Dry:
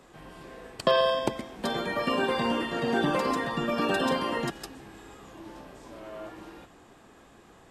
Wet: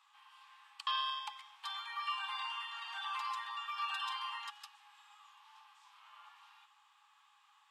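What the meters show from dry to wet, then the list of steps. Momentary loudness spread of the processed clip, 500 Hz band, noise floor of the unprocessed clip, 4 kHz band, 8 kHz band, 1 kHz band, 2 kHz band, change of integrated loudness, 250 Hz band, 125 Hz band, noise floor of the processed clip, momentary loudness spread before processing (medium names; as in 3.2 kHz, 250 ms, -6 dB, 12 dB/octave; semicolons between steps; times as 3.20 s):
22 LU, under -40 dB, -55 dBFS, -5.5 dB, -14.0 dB, -9.0 dB, -11.0 dB, -11.5 dB, under -40 dB, under -40 dB, -69 dBFS, 21 LU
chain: rippled Chebyshev high-pass 810 Hz, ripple 9 dB; treble shelf 7 kHz -4.5 dB; trim -4 dB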